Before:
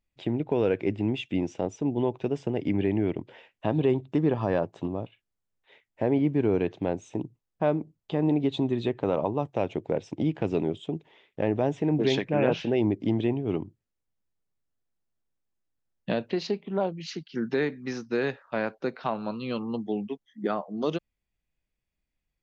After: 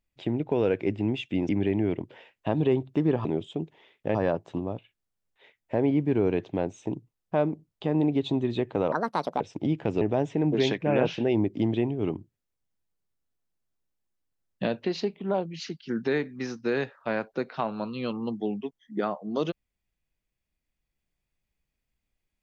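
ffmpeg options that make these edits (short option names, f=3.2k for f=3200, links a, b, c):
-filter_complex "[0:a]asplit=7[a][b][c][d][e][f][g];[a]atrim=end=1.492[h];[b]atrim=start=2.668:end=4.432[i];[c]atrim=start=10.578:end=11.482[j];[d]atrim=start=4.428:end=9.204[k];[e]atrim=start=9.2:end=9.97,asetpts=PTS-STARTPTS,asetrate=70119,aresample=44100[l];[f]atrim=start=9.966:end=10.582[m];[g]atrim=start=11.478[n];[h][i]acrossfade=d=0.004:c1=hsin:c2=hsin[o];[o][j]acrossfade=d=0.004:c1=hsin:c2=hsin[p];[p][k]acrossfade=d=0.004:c1=hsin:c2=hsin[q];[q][l]acrossfade=d=0.004:c1=hsin:c2=hsin[r];[r][m]acrossfade=d=0.004:c1=hsin:c2=hsin[s];[s][n]acrossfade=d=0.004:c1=hsin:c2=hsin"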